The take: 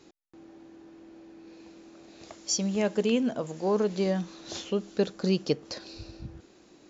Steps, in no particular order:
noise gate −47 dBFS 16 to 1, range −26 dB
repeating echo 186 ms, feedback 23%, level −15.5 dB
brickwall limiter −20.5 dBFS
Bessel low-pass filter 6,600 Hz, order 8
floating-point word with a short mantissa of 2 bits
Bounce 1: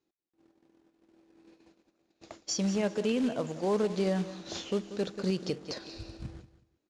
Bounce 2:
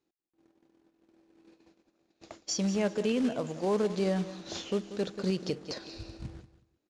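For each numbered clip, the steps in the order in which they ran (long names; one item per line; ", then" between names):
floating-point word with a short mantissa, then noise gate, then repeating echo, then brickwall limiter, then Bessel low-pass filter
noise gate, then repeating echo, then floating-point word with a short mantissa, then brickwall limiter, then Bessel low-pass filter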